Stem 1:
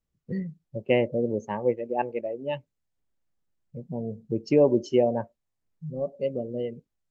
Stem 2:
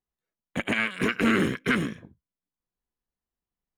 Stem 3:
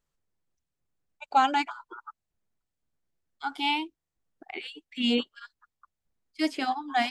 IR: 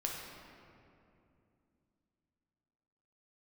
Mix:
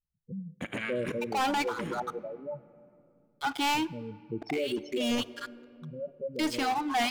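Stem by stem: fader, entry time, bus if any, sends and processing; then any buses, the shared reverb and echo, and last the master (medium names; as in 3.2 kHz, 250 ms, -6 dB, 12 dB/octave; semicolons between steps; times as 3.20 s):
-8.0 dB, 0.00 s, send -17.5 dB, spectral gate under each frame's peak -10 dB strong
-1.5 dB, 0.05 s, muted 1.12–1.79 s, send -20.5 dB, expander -46 dBFS; auto duck -10 dB, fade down 0.90 s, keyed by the first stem
-12.5 dB, 0.00 s, send -19.5 dB, waveshaping leveller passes 5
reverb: on, RT60 2.7 s, pre-delay 7 ms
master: peak limiter -23 dBFS, peak gain reduction 7.5 dB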